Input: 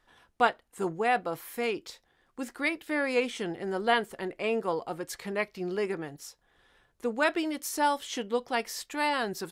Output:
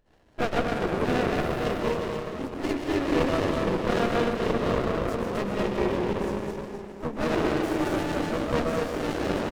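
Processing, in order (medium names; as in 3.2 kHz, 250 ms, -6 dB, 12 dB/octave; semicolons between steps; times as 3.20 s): backward echo that repeats 128 ms, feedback 63%, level 0 dB; low-pass 2.9 kHz 6 dB/octave; dynamic bell 1.2 kHz, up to -4 dB, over -37 dBFS, Q 0.78; harmony voices +3 st -9 dB, +5 st -4 dB; delay 657 ms -17.5 dB; on a send at -1 dB: reverberation RT60 1.9 s, pre-delay 90 ms; on the sum: sliding maximum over 33 samples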